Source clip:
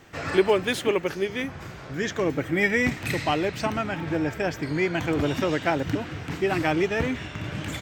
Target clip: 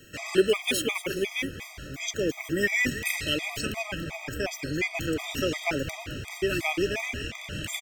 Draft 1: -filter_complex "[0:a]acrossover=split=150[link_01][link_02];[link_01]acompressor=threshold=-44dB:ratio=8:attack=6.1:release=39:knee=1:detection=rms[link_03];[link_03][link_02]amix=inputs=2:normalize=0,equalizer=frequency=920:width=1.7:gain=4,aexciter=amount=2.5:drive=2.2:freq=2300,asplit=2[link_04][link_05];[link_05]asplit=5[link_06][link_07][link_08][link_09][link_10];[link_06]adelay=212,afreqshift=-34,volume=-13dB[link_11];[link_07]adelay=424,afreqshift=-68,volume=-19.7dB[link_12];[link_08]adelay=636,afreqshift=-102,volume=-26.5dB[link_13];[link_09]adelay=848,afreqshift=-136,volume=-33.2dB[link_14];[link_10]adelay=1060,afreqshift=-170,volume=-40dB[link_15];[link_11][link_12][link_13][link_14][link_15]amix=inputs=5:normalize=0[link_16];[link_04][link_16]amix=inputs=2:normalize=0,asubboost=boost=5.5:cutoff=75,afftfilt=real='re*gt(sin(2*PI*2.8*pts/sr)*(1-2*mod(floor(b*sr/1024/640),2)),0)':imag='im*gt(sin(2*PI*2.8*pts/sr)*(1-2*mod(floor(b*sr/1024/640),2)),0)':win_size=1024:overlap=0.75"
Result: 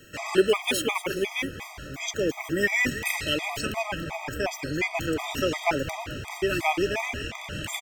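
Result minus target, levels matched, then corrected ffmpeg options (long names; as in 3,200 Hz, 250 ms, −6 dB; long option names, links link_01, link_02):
1,000 Hz band +6.5 dB
-filter_complex "[0:a]acrossover=split=150[link_01][link_02];[link_01]acompressor=threshold=-44dB:ratio=8:attack=6.1:release=39:knee=1:detection=rms[link_03];[link_03][link_02]amix=inputs=2:normalize=0,equalizer=frequency=920:width=1.7:gain=-7.5,aexciter=amount=2.5:drive=2.2:freq=2300,asplit=2[link_04][link_05];[link_05]asplit=5[link_06][link_07][link_08][link_09][link_10];[link_06]adelay=212,afreqshift=-34,volume=-13dB[link_11];[link_07]adelay=424,afreqshift=-68,volume=-19.7dB[link_12];[link_08]adelay=636,afreqshift=-102,volume=-26.5dB[link_13];[link_09]adelay=848,afreqshift=-136,volume=-33.2dB[link_14];[link_10]adelay=1060,afreqshift=-170,volume=-40dB[link_15];[link_11][link_12][link_13][link_14][link_15]amix=inputs=5:normalize=0[link_16];[link_04][link_16]amix=inputs=2:normalize=0,asubboost=boost=5.5:cutoff=75,afftfilt=real='re*gt(sin(2*PI*2.8*pts/sr)*(1-2*mod(floor(b*sr/1024/640),2)),0)':imag='im*gt(sin(2*PI*2.8*pts/sr)*(1-2*mod(floor(b*sr/1024/640),2)),0)':win_size=1024:overlap=0.75"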